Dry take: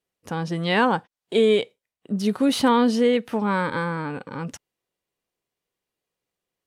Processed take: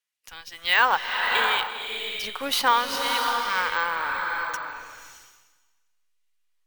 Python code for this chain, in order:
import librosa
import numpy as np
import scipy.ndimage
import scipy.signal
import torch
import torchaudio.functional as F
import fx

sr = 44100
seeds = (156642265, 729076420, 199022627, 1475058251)

p1 = fx.filter_lfo_highpass(x, sr, shape='sine', hz=0.7, low_hz=970.0, high_hz=2500.0, q=1.0)
p2 = fx.backlash(p1, sr, play_db=-26.5)
p3 = p1 + (p2 * librosa.db_to_amplitude(-4.5))
p4 = np.repeat(p3[::2], 2)[:len(p3)]
y = fx.rev_bloom(p4, sr, seeds[0], attack_ms=620, drr_db=2.0)